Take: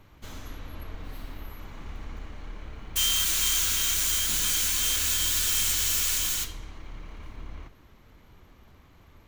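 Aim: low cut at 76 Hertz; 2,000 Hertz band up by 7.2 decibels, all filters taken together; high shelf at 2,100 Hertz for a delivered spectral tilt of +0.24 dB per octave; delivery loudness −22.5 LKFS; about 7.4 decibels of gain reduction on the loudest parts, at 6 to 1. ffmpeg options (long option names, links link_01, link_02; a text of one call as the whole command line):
ffmpeg -i in.wav -af "highpass=76,equalizer=frequency=2000:width_type=o:gain=7,highshelf=frequency=2100:gain=3.5,acompressor=threshold=-26dB:ratio=6,volume=4dB" out.wav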